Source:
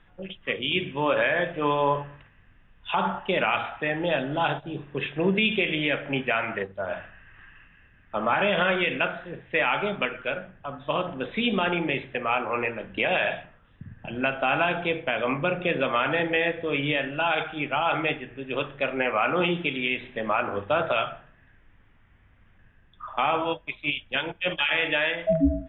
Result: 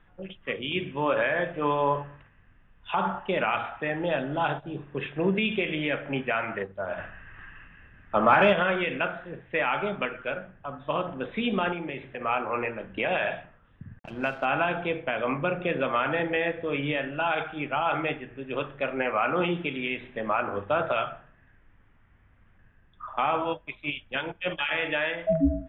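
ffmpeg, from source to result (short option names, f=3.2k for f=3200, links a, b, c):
-filter_complex "[0:a]asettb=1/sr,asplit=3[a][b][c];[a]atrim=end=6.984[d];[b]atrim=start=6.98:end=8.53,asetpts=PTS-STARTPTS,afade=t=in:d=0.004:c=qsin,afade=t=out:st=1.546:d=0.004:c=qsin,acontrast=64[e];[c]atrim=start=8.526[f];[d][e]acrossfade=d=0.004:c1=hsin:c2=qsin[g];[g][f]acrossfade=d=0.004:c1=qsin:c2=hsin,asettb=1/sr,asplit=3[h][i][j];[h]atrim=end=11.724[k];[i]atrim=start=11.72:end=12.21,asetpts=PTS-STARTPTS,afade=t=in:d=0.004:c=qsin,afade=t=out:st=0.486:d=0.004:c=qsin,acompressor=threshold=-37dB:ratio=1.5:attack=3.2:release=140:knee=1:detection=peak[l];[j]atrim=start=12.206[m];[k][l]acrossfade=d=0.004:c1=hsin:c2=qsin[n];[n][m]acrossfade=d=0.004:c1=qsin:c2=hsin,asettb=1/sr,asplit=3[o][p][q];[o]atrim=end=13.994[r];[p]atrim=start=13.99:end=14.45,asetpts=PTS-STARTPTS,afade=t=in:d=0.004:c=qsin,afade=t=out:st=0.456:d=0.004:c=qsin,aeval=exprs='sgn(val(0))*max(abs(val(0))-0.00841,0)':c=same[s];[q]atrim=start=14.446[t];[r][s]acrossfade=d=0.004:c1=hsin:c2=qsin[u];[u][t]acrossfade=d=0.004:c1=qsin:c2=hsin,lowpass=f=2.2k:p=1,equalizer=f=1.3k:t=o:w=0.77:g=2,volume=-1.5dB"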